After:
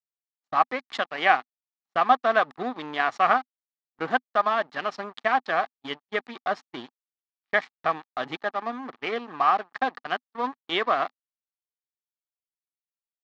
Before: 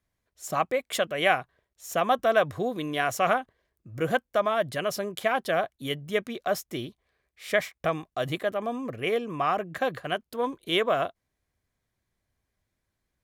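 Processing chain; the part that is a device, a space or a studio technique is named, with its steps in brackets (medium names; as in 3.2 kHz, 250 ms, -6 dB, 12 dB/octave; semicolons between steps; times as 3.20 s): blown loudspeaker (crossover distortion -36.5 dBFS; cabinet simulation 210–5100 Hz, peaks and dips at 250 Hz +7 dB, 540 Hz -6 dB, 820 Hz +10 dB, 1.2 kHz +9 dB, 1.8 kHz +6 dB, 4.2 kHz +4 dB); gate -42 dBFS, range -35 dB; trim -1 dB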